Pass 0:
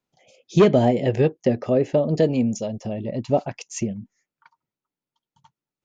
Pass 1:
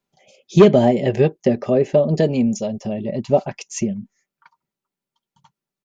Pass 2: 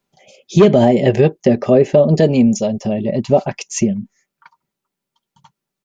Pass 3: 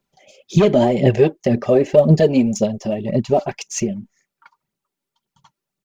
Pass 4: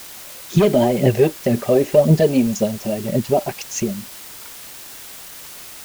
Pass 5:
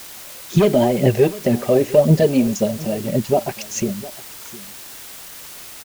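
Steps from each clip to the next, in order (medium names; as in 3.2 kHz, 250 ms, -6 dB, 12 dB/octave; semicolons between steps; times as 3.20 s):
comb 5.1 ms, depth 39%; trim +2.5 dB
loudness maximiser +7 dB; trim -1 dB
phaser 1.9 Hz, delay 3.7 ms, feedback 54%; trim -3.5 dB
word length cut 6-bit, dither triangular; trim -1 dB
delay 708 ms -18.5 dB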